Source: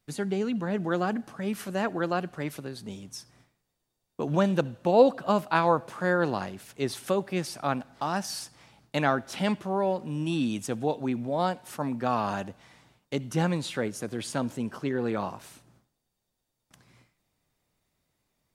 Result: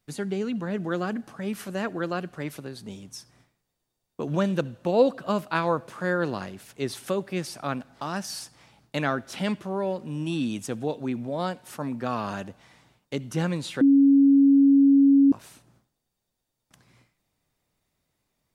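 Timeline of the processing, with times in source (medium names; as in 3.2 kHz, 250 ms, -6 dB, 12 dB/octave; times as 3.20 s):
13.81–15.32 s: bleep 277 Hz -13 dBFS
whole clip: dynamic bell 810 Hz, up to -6 dB, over -42 dBFS, Q 2.5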